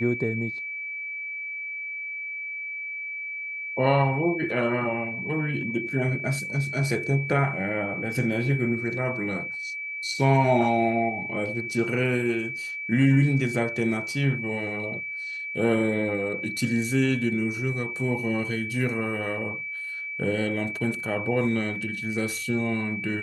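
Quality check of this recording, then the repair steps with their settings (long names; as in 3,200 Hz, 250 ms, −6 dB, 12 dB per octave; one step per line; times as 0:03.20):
whistle 2,300 Hz −31 dBFS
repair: notch filter 2,300 Hz, Q 30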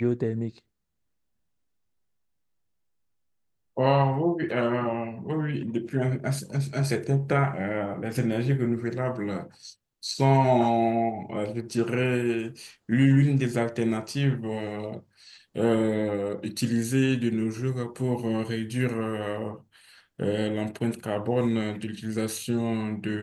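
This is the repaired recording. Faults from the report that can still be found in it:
none of them is left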